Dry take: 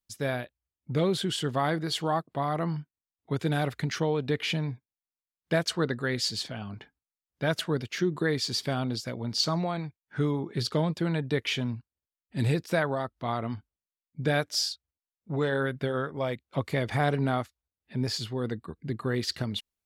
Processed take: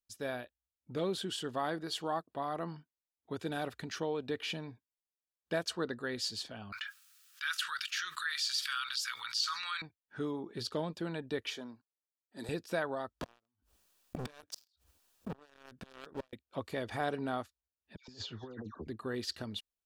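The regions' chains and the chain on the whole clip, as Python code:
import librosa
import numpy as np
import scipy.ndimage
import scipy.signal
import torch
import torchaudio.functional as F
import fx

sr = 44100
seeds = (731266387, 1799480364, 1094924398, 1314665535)

y = fx.chain(x, sr, fx.ellip_highpass(hz=1300.0, order=4, stop_db=50),
    fx.env_flatten(amount_pct=70), at=(6.72, 9.82))
y = fx.chain(y, sr, fx.highpass(hz=310.0, slope=12),
    fx.peak_eq(hz=2700.0, db=-14.0, octaves=0.46), at=(11.5, 12.49))
y = fx.chain(y, sr, fx.gate_flip(shuts_db=-25.0, range_db=-38),
    fx.leveller(passes=5),
    fx.pre_swell(db_per_s=80.0), at=(13.2, 16.33))
y = fx.chain(y, sr, fx.dispersion(late='lows', ms=119.0, hz=1600.0),
    fx.over_compress(threshold_db=-34.0, ratio=-0.5),
    fx.resample_bad(factor=3, down='none', up='filtered'), at=(17.96, 18.87))
y = fx.peak_eq(y, sr, hz=140.0, db=-11.5, octaves=0.58)
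y = fx.notch(y, sr, hz=2100.0, q=6.8)
y = y * 10.0 ** (-7.0 / 20.0)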